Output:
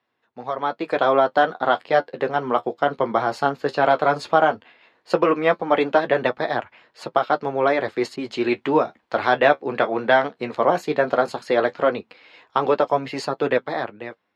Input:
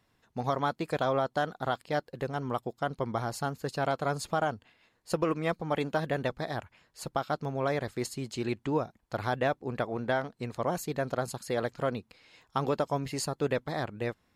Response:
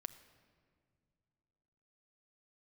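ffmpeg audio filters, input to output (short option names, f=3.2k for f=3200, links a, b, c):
-filter_complex "[0:a]highpass=100,acrossover=split=270 4100:gain=0.178 1 0.0708[a][b][c];[a][b][c]amix=inputs=3:normalize=0,dynaudnorm=f=140:g=11:m=15dB,flanger=delay=8:depth=6.5:regen=-40:speed=0.15:shape=triangular,asettb=1/sr,asplit=3[d][e][f];[d]atrim=end=8.164[g];[e]atrim=start=8.16:end=10.32,asetpts=PTS-STARTPTS,afade=t=in:d=0.004:c=qsin,afade=t=out:st=2.156:d=0.004:c=qsin,adynamicequalizer=threshold=0.0282:dfrequency=1800:dqfactor=0.7:tfrequency=1800:tqfactor=0.7:attack=5:release=100:ratio=0.375:range=2:mode=boostabove:tftype=highshelf[h];[f]atrim=start=10.316[i];[g][h]acrossfade=d=0.004:c1=hsin:c2=qsin[j];[j][i]acrossfade=d=0.004:c1=qsin:c2=hsin,volume=3dB"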